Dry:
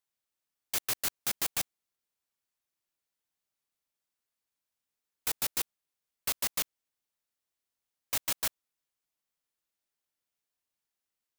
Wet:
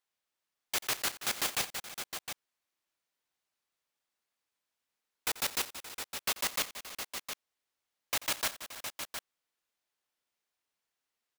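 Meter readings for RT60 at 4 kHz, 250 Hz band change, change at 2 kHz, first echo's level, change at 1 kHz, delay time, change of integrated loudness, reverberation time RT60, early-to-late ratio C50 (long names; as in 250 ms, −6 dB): no reverb audible, +1.0 dB, +4.5 dB, −17.5 dB, +4.5 dB, 87 ms, −2.5 dB, no reverb audible, no reverb audible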